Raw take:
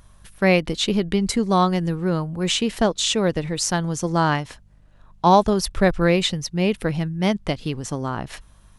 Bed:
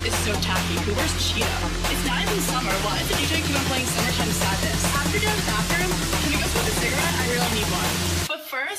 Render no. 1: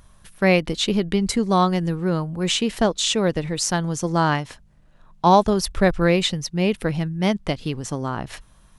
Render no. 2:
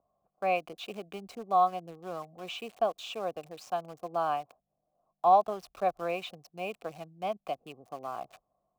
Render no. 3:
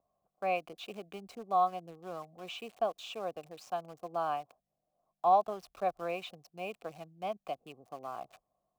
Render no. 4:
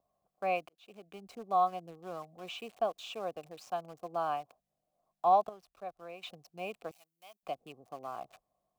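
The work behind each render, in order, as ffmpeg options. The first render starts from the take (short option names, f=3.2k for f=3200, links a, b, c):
-af "bandreject=f=50:t=h:w=4,bandreject=f=100:t=h:w=4"
-filter_complex "[0:a]asplit=3[a][b][c];[a]bandpass=f=730:t=q:w=8,volume=0dB[d];[b]bandpass=f=1.09k:t=q:w=8,volume=-6dB[e];[c]bandpass=f=2.44k:t=q:w=8,volume=-9dB[f];[d][e][f]amix=inputs=3:normalize=0,acrossover=split=170|800[g][h][i];[i]aeval=exprs='val(0)*gte(abs(val(0)),0.00316)':c=same[j];[g][h][j]amix=inputs=3:normalize=0"
-af "volume=-3.5dB"
-filter_complex "[0:a]asettb=1/sr,asplit=3[a][b][c];[a]atrim=end=6.914[d];[b]atrim=start=6.91:end=7.43,asetpts=PTS-STARTPTS,afade=t=in:d=0.004:c=qsin,afade=t=out:st=0.516:d=0.004:c=qsin,aderivative[e];[c]atrim=start=7.426[f];[d][e]acrossfade=d=0.004:c1=hsin:c2=qsin[g];[g][f]acrossfade=d=0.004:c1=qsin:c2=hsin,asplit=4[h][i][j][k];[h]atrim=end=0.69,asetpts=PTS-STARTPTS,afade=t=out:st=0.686:d=0.004:c=hsin[l];[i]atrim=start=0.69:end=5.492,asetpts=PTS-STARTPTS,afade=t=in:d=0.73[m];[j]atrim=start=5.488:end=6.232,asetpts=PTS-STARTPTS,volume=-10.5dB[n];[k]atrim=start=6.228[o];[l][m]concat=n=2:v=0:a=1[p];[p][n]acrossfade=d=0.004:c1=hsin:c2=hsin[q];[q][o]acrossfade=d=0.004:c1=hsin:c2=hsin"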